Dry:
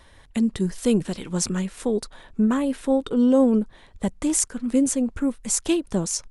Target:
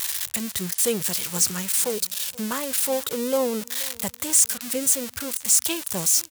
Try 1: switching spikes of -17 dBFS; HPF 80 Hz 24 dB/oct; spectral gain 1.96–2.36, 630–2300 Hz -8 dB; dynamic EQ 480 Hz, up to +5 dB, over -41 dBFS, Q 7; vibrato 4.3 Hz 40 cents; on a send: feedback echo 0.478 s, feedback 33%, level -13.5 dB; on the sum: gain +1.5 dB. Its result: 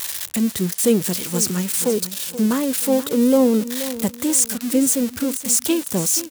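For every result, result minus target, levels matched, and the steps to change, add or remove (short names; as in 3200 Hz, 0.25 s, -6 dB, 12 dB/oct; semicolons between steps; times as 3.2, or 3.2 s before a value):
250 Hz band +10.0 dB; echo-to-direct +9 dB
add after HPF: bell 270 Hz -14.5 dB 1.5 oct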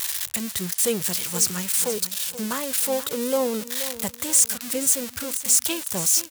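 echo-to-direct +9 dB
change: feedback echo 0.478 s, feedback 33%, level -22.5 dB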